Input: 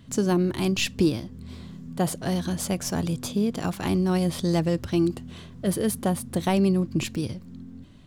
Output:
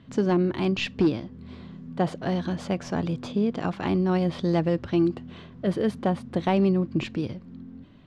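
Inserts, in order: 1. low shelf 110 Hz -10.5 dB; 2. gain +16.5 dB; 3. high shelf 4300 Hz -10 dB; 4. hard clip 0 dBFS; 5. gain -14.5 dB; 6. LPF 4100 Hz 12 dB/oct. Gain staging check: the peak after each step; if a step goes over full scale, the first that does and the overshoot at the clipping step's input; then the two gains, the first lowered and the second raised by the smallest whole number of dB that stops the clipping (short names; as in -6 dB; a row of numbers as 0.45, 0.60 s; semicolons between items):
-13.0, +3.5, +3.5, 0.0, -14.5, -14.0 dBFS; step 2, 3.5 dB; step 2 +12.5 dB, step 5 -10.5 dB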